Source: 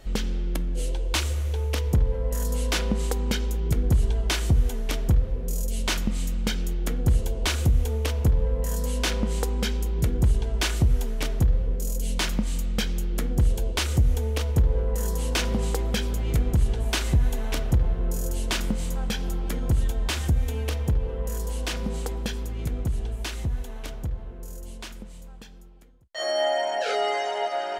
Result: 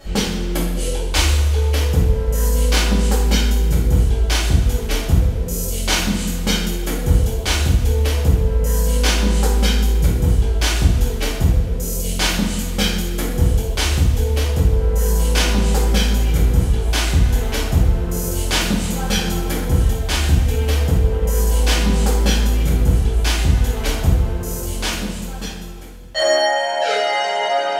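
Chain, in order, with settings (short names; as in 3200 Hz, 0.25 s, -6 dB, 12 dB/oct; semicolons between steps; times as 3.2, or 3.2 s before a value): vocal rider 0.5 s; two-slope reverb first 0.68 s, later 2.6 s, from -17 dB, DRR -8.5 dB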